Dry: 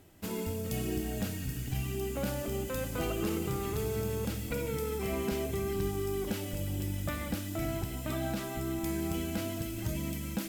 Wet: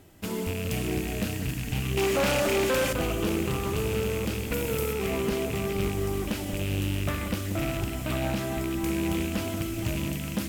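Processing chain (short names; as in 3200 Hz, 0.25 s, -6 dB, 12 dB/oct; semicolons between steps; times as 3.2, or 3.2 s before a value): rattling part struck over -35 dBFS, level -30 dBFS; echo with dull and thin repeats by turns 0.184 s, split 1500 Hz, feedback 77%, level -10 dB; 1.97–2.93 overdrive pedal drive 23 dB, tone 4800 Hz, clips at -21 dBFS; 4.52–4.93 high shelf 10000 Hz +9.5 dB; Doppler distortion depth 0.31 ms; gain +4.5 dB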